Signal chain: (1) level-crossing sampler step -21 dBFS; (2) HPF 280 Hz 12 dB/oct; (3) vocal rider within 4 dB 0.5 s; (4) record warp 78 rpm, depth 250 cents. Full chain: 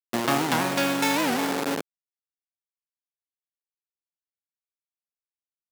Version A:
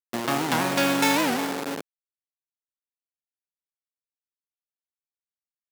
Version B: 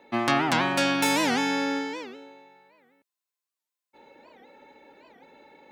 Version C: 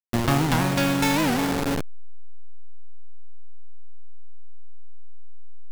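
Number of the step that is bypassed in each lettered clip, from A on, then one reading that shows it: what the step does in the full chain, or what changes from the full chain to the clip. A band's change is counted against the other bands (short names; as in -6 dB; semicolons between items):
3, momentary loudness spread change +5 LU; 1, distortion -1 dB; 2, crest factor change -5.0 dB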